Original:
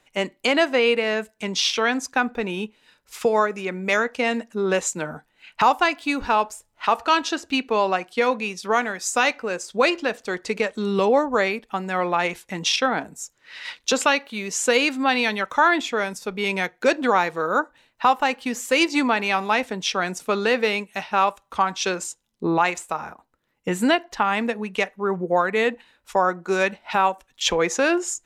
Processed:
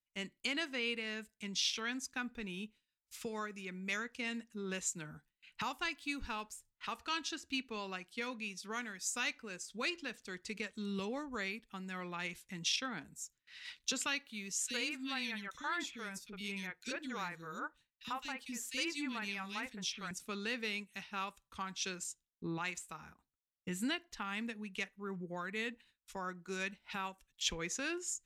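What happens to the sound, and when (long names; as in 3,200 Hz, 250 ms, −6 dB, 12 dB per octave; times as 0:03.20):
0:14.52–0:20.11: three-band delay without the direct sound highs, lows, mids 30/60 ms, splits 380/2,400 Hz
whole clip: noise gate with hold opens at −41 dBFS; guitar amp tone stack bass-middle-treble 6-0-2; level +3.5 dB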